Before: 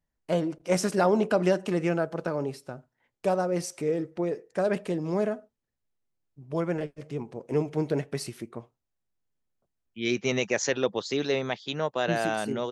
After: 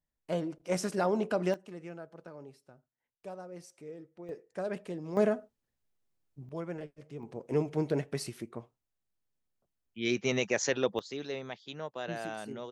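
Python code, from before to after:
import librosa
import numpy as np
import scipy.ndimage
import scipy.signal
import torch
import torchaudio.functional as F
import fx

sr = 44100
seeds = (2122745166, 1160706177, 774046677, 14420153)

y = fx.gain(x, sr, db=fx.steps((0.0, -6.5), (1.54, -18.0), (4.29, -9.5), (5.17, 1.0), (6.49, -10.0), (7.23, -3.0), (10.99, -11.0)))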